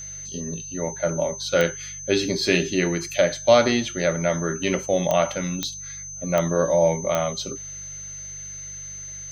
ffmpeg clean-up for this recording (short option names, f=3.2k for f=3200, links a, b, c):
-af "adeclick=t=4,bandreject=f=48.9:t=h:w=4,bandreject=f=97.8:t=h:w=4,bandreject=f=146.7:t=h:w=4,bandreject=f=6.2k:w=30"